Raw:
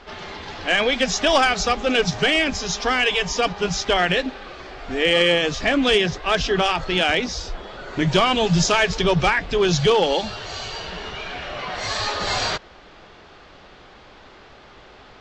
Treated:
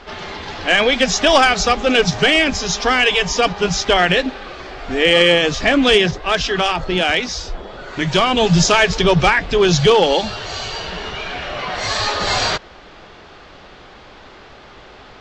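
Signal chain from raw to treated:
0:06.11–0:08.37: two-band tremolo in antiphase 1.3 Hz, depth 50%, crossover 900 Hz
level +5 dB

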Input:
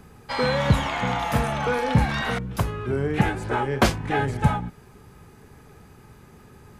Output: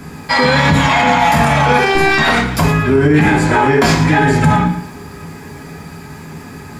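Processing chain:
0:01.78–0:02.18: phases set to zero 389 Hz
convolution reverb RT60 0.35 s, pre-delay 3 ms, DRR −4 dB
boost into a limiter +16 dB
feedback echo at a low word length 113 ms, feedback 35%, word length 7 bits, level −12 dB
level −2.5 dB

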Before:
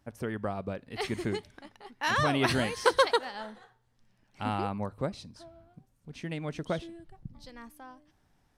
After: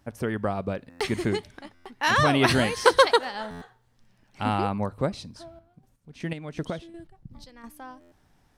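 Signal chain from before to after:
0:05.46–0:07.64: square-wave tremolo 2.7 Hz, depth 60%, duty 35%
buffer that repeats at 0:00.89/0:01.74/0:03.50/0:08.00, samples 512, times 9
level +6 dB

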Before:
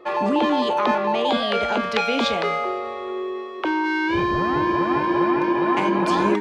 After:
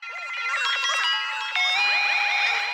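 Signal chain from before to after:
variable-slope delta modulation 64 kbit/s
floating-point word with a short mantissa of 2 bits
high-pass filter 810 Hz 12 dB per octave
parametric band 5,600 Hz +2.5 dB 0.26 octaves
on a send: delay with a high-pass on its return 188 ms, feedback 35%, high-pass 2,100 Hz, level −7 dB
on the sum: wrong playback speed 33 rpm record played at 78 rpm
high-frequency loss of the air 220 metres
brickwall limiter −21.5 dBFS, peak gain reduction 5.5 dB
automatic gain control gain up to 13 dB
feedback echo at a low word length 757 ms, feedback 35%, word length 10 bits, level −8 dB
level −5 dB

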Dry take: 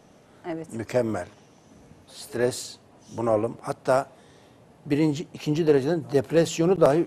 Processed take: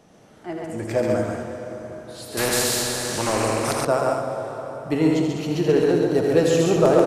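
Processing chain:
multi-tap delay 82/137/203/339 ms −6.5/−3/−7/−16.5 dB
dense smooth reverb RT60 4.8 s, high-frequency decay 0.6×, DRR 5 dB
0:02.37–0:03.85: every bin compressed towards the loudest bin 2 to 1

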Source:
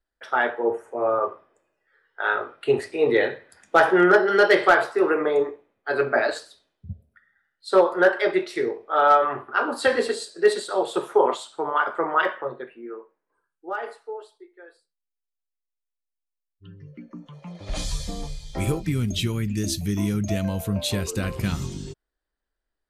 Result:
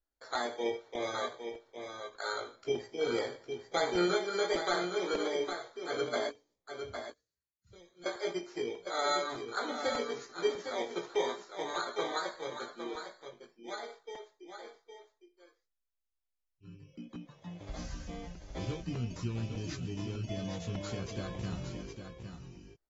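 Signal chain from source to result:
samples in bit-reversed order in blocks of 16 samples
downward compressor 1.5 to 1, threshold −34 dBFS, peak gain reduction 8.5 dB
0:06.29–0:08.06: guitar amp tone stack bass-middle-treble 10-0-1
double-tracking delay 17 ms −3.5 dB
on a send: single-tap delay 808 ms −7.5 dB
on the sum: regular buffer underruns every 0.60 s, samples 128, repeat, from 0:00.35
level −8.5 dB
AAC 24 kbit/s 44,100 Hz

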